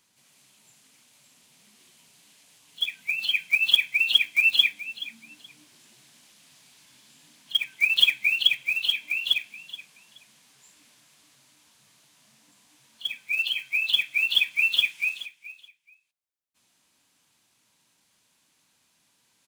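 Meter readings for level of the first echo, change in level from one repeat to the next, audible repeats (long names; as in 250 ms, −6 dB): −16.0 dB, −14.0 dB, 2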